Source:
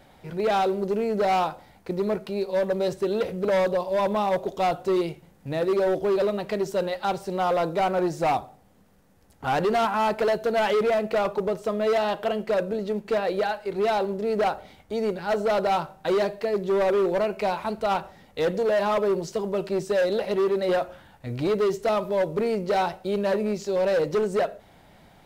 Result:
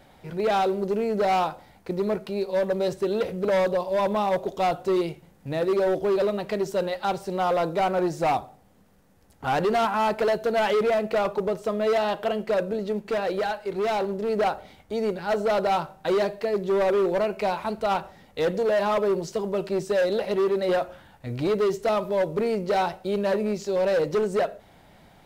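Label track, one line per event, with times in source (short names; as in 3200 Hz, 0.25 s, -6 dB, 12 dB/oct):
12.970000	14.290000	hard clip -22 dBFS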